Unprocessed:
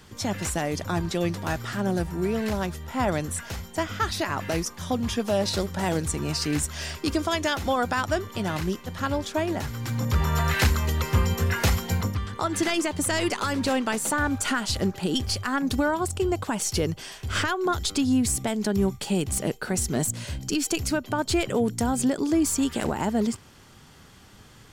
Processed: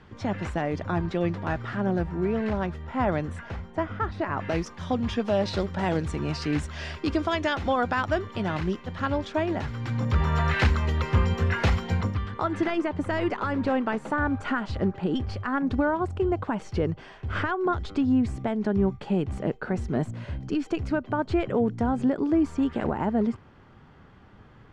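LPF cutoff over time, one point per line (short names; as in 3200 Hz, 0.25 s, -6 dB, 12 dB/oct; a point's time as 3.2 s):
3.3 s 2200 Hz
4.14 s 1200 Hz
4.57 s 3100 Hz
12.19 s 3100 Hz
12.72 s 1700 Hz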